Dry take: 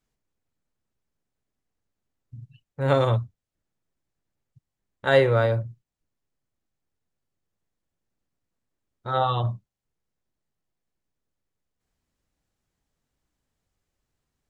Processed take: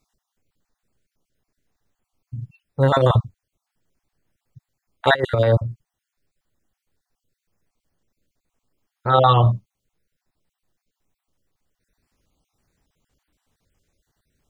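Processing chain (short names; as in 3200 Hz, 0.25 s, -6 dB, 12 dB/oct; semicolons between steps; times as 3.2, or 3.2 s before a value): random spectral dropouts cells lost 36%; negative-ratio compressor -23 dBFS, ratio -0.5; gain +8.5 dB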